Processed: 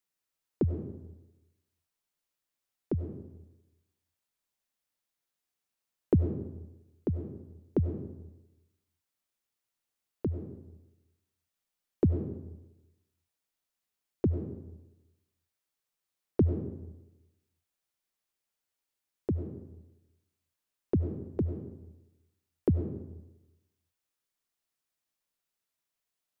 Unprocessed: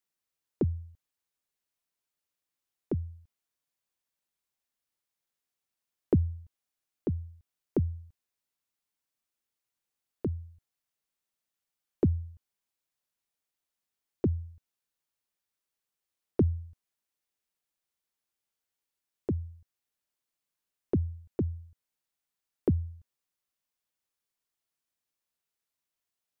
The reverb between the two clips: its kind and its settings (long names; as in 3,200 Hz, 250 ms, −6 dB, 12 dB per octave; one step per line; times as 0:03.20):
comb and all-pass reverb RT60 1 s, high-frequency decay 0.6×, pre-delay 55 ms, DRR 6.5 dB